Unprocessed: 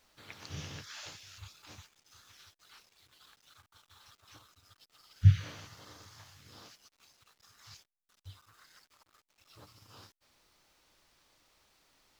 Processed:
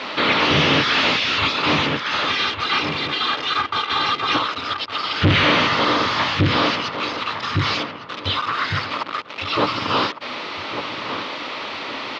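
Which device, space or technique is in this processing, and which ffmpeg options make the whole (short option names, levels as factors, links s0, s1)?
overdrive pedal into a guitar cabinet: -filter_complex "[0:a]asettb=1/sr,asplit=3[s0][s1][s2];[s0]atrim=end=2.264[s3];[s1]atrim=start=2.26:end=4.35,asetpts=PTS-STARTPTS,afade=t=in:d=0.004:c=qsin,afade=t=out:st=2.086:d=0.004:c=qsin,aecho=1:1:2.5:0.88,atrim=end_sample=92169[s4];[s2]atrim=start=4.346[s5];[s3][s4]acrossfade=d=0.004:c1=hsin:c2=qsin[s6];[s6][s5]acrossfade=d=0.004:c1=qsin:c2=hsin,asplit=2[s7][s8];[s8]adelay=1157,lowpass=f=1800:p=1,volume=0.251,asplit=2[s9][s10];[s10]adelay=1157,lowpass=f=1800:p=1,volume=0.37,asplit=2[s11][s12];[s12]adelay=1157,lowpass=f=1800:p=1,volume=0.37,asplit=2[s13][s14];[s14]adelay=1157,lowpass=f=1800:p=1,volume=0.37[s15];[s7][s9][s11][s13][s15]amix=inputs=5:normalize=0,asplit=2[s16][s17];[s17]highpass=f=720:p=1,volume=251,asoftclip=type=tanh:threshold=0.355[s18];[s16][s18]amix=inputs=2:normalize=0,lowpass=f=2100:p=1,volume=0.501,highpass=88,equalizer=f=100:t=q:w=4:g=-6,equalizer=f=260:t=q:w=4:g=6,equalizer=f=760:t=q:w=4:g=-5,equalizer=f=1600:t=q:w=4:g=-6,lowpass=f=4000:w=0.5412,lowpass=f=4000:w=1.3066,volume=2"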